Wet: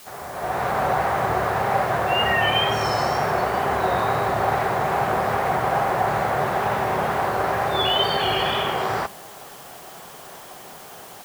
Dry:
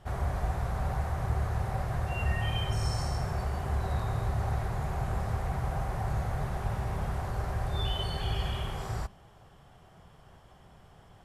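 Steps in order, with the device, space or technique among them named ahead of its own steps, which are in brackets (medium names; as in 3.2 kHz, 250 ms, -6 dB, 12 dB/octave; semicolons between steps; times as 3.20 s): dictaphone (band-pass 320–3500 Hz; level rider gain up to 16 dB; wow and flutter; white noise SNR 22 dB); trim +1.5 dB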